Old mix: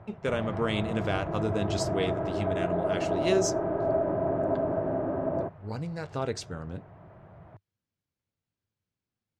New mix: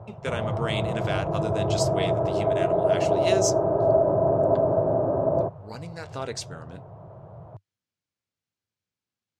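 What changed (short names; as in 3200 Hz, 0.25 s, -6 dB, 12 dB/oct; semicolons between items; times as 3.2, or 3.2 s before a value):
speech: add tilt +2 dB/oct; background: add graphic EQ 125/250/500/1000/2000 Hz +10/-4/+9/+6/-11 dB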